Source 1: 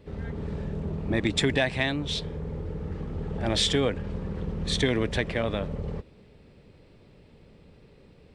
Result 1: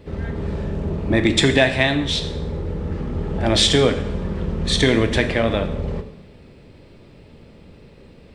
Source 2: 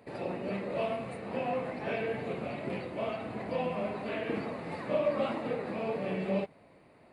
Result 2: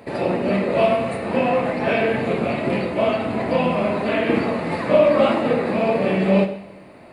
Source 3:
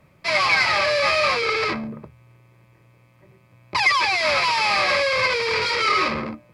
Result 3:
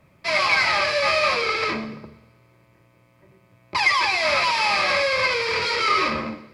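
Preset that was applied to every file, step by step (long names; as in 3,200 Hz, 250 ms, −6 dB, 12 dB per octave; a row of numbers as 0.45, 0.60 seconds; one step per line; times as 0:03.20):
coupled-rooms reverb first 0.77 s, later 2.3 s, from −26 dB, DRR 6.5 dB
loudness normalisation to −20 LKFS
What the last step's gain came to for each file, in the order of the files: +8.0, +13.5, −1.5 decibels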